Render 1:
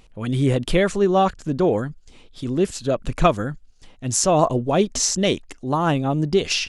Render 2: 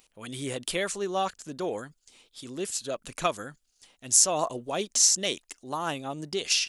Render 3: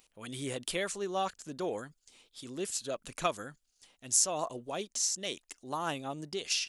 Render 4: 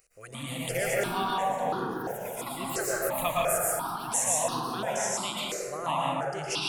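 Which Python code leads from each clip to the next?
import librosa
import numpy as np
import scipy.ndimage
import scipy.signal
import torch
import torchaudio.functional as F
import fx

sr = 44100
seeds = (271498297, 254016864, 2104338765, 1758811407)

y1 = fx.riaa(x, sr, side='recording')
y1 = F.gain(torch.from_numpy(y1), -9.0).numpy()
y2 = fx.rider(y1, sr, range_db=4, speed_s=0.5)
y2 = F.gain(torch.from_numpy(y2), -7.5).numpy()
y3 = fx.echo_pitch(y2, sr, ms=210, semitones=4, count=3, db_per_echo=-6.0)
y3 = fx.rev_plate(y3, sr, seeds[0], rt60_s=2.3, hf_ratio=0.3, predelay_ms=100, drr_db=-6.0)
y3 = fx.phaser_held(y3, sr, hz=2.9, low_hz=920.0, high_hz=2200.0)
y3 = F.gain(torch.from_numpy(y3), 2.5).numpy()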